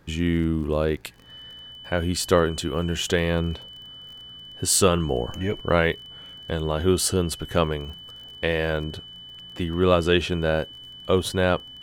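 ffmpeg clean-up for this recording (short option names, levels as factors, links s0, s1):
-af "adeclick=t=4,bandreject=f=3000:w=30"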